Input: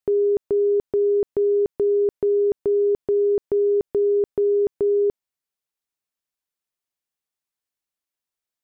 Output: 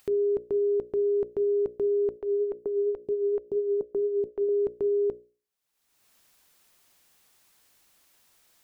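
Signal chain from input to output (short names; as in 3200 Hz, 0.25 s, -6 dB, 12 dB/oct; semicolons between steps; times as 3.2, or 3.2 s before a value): upward compressor, threshold -34 dBFS; notches 60/120/180/240/300/360/420/480/540/600 Hz; 2.17–4.49 photocell phaser 4.3 Hz; gain -5.5 dB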